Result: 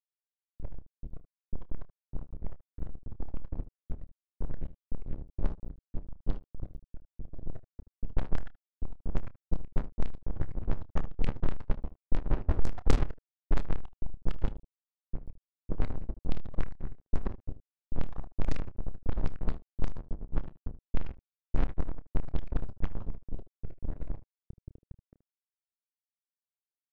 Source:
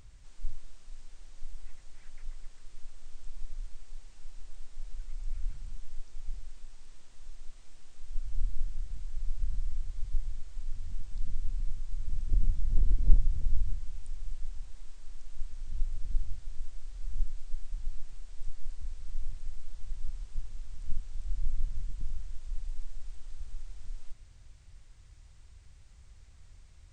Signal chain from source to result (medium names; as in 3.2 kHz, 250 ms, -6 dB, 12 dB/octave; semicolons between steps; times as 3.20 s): random holes in the spectrogram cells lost 68%; tone controls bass -11 dB, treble -5 dB; de-hum 49.33 Hz, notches 23; transient shaper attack +7 dB, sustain -8 dB; peak limiter -22.5 dBFS, peak gain reduction 7 dB; feedback comb 89 Hz, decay 0.42 s, harmonics all, mix 70%; companded quantiser 4-bit; early reflections 29 ms -13 dB, 77 ms -15 dB; level-controlled noise filter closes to 300 Hz, open at -27 dBFS; trim +16.5 dB